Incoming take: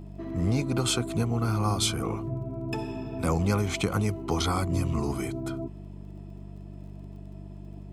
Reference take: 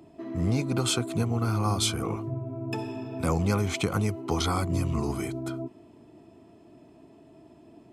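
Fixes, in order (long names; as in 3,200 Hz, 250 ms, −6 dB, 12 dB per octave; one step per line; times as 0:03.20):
click removal
hum removal 48.8 Hz, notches 4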